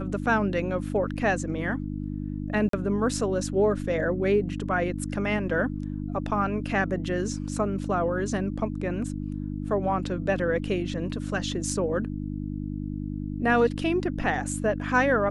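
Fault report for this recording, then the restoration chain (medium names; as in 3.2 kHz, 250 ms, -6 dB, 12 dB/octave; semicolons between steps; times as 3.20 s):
hum 50 Hz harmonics 6 -32 dBFS
2.69–2.73 s: dropout 43 ms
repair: de-hum 50 Hz, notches 6; interpolate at 2.69 s, 43 ms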